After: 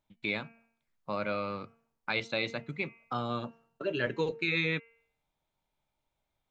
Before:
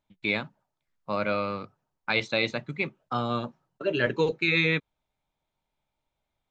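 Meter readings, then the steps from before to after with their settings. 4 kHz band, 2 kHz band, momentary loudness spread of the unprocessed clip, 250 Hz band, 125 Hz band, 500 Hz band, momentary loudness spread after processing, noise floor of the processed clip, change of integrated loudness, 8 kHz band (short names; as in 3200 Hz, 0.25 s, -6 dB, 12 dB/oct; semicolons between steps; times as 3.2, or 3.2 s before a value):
-6.0 dB, -6.0 dB, 15 LU, -5.5 dB, -5.5 dB, -6.0 dB, 13 LU, -84 dBFS, -6.0 dB, n/a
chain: de-hum 229.2 Hz, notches 13; in parallel at +2 dB: compressor, threshold -36 dBFS, peak gain reduction 15.5 dB; on the sum: gain -8 dB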